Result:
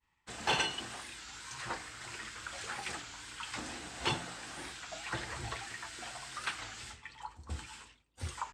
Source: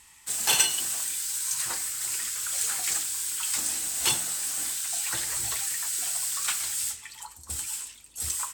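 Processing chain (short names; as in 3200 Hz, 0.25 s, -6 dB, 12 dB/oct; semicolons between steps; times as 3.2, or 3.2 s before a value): tape spacing loss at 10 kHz 33 dB; expander -54 dBFS; record warp 33 1/3 rpm, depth 160 cents; gain +3.5 dB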